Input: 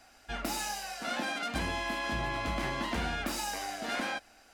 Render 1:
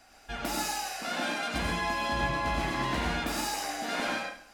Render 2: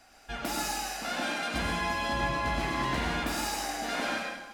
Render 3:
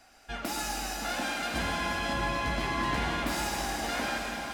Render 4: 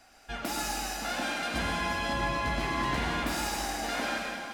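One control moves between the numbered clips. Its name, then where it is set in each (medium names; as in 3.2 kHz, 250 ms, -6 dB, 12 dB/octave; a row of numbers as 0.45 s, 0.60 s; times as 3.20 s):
plate-style reverb, RT60: 0.52 s, 1.1 s, 5.3 s, 2.5 s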